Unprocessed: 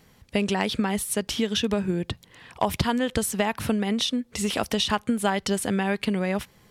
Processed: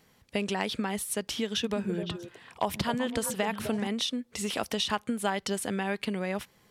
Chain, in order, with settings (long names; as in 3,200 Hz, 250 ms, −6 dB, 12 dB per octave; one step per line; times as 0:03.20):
low-shelf EQ 140 Hz −8.5 dB
0:01.49–0:03.87: echo through a band-pass that steps 128 ms, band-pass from 180 Hz, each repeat 1.4 octaves, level −3 dB
level −4.5 dB